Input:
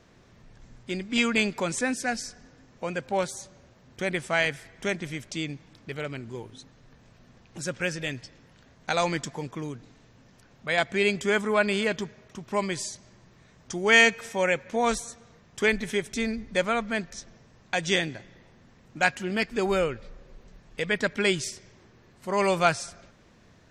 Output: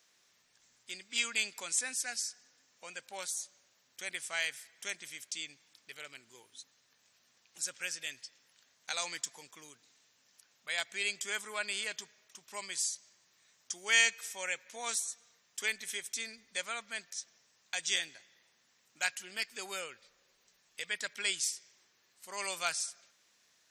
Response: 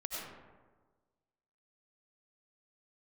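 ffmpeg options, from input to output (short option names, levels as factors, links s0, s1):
-af "aderivative,volume=1.26"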